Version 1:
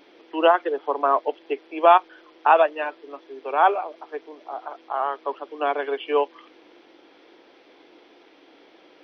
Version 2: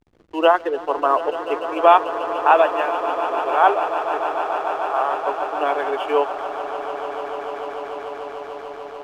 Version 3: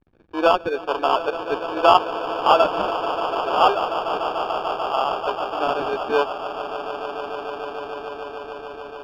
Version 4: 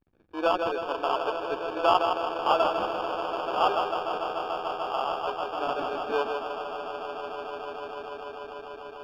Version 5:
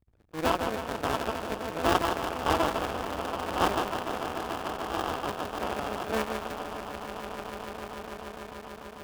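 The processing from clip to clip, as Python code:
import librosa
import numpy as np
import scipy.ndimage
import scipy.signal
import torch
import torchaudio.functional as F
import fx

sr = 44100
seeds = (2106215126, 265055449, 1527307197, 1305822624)

y1 = fx.echo_swell(x, sr, ms=147, loudest=8, wet_db=-14.5)
y1 = fx.backlash(y1, sr, play_db=-40.5)
y1 = F.gain(torch.from_numpy(y1), 2.0).numpy()
y2 = fx.sample_hold(y1, sr, seeds[0], rate_hz=2000.0, jitter_pct=0)
y2 = fx.air_absorb(y2, sr, metres=300.0)
y3 = fx.echo_feedback(y2, sr, ms=159, feedback_pct=51, wet_db=-6)
y3 = F.gain(torch.from_numpy(y3), -8.0).numpy()
y4 = fx.cycle_switch(y3, sr, every=2, mode='muted')
y4 = fx.peak_eq(y4, sr, hz=68.0, db=12.5, octaves=1.6)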